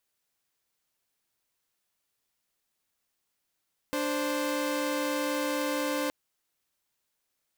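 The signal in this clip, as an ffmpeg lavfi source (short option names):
-f lavfi -i "aevalsrc='0.0398*((2*mod(293.66*t,1)-1)+(2*mod(523.25*t,1)-1))':d=2.17:s=44100"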